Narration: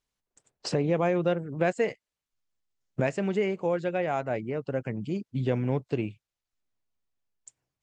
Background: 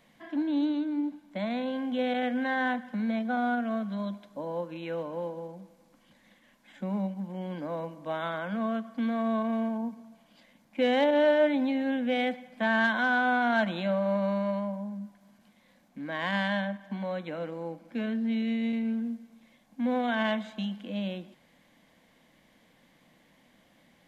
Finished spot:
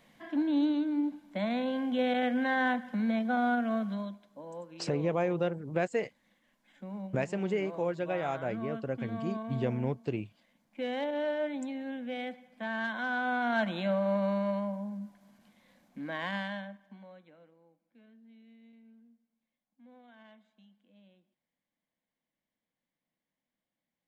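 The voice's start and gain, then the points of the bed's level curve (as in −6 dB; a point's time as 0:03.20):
4.15 s, −4.5 dB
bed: 0:03.91 0 dB
0:04.19 −9.5 dB
0:12.77 −9.5 dB
0:13.82 −1.5 dB
0:16.07 −1.5 dB
0:17.70 −28.5 dB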